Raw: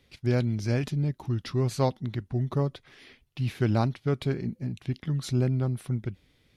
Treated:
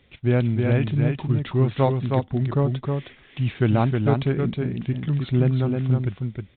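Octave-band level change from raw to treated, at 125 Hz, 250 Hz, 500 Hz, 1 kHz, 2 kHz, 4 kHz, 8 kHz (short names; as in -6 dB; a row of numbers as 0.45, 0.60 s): +6.5 dB, +6.5 dB, +6.5 dB, +6.5 dB, +6.5 dB, +2.0 dB, under -35 dB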